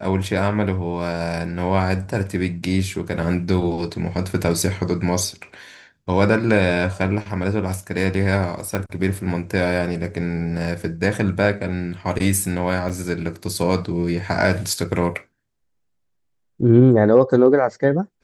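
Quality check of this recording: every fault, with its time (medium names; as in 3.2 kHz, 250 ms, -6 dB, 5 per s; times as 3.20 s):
8.75 s: pop -9 dBFS
12.89–12.90 s: dropout 7 ms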